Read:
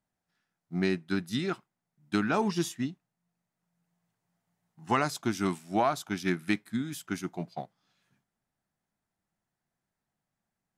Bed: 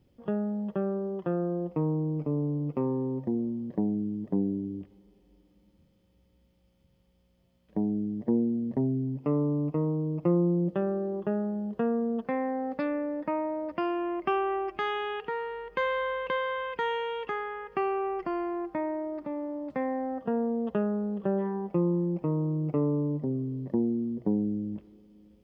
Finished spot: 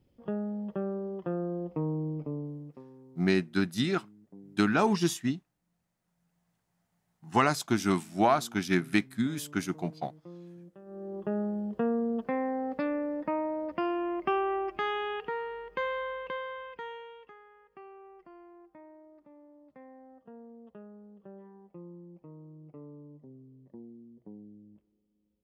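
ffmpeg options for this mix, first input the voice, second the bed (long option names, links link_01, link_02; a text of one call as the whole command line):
ffmpeg -i stem1.wav -i stem2.wav -filter_complex "[0:a]adelay=2450,volume=2.5dB[link_01];[1:a]volume=18.5dB,afade=type=out:start_time=2.07:duration=0.77:silence=0.105925,afade=type=in:start_time=10.85:duration=0.56:silence=0.0794328,afade=type=out:start_time=15.17:duration=2.18:silence=0.1[link_02];[link_01][link_02]amix=inputs=2:normalize=0" out.wav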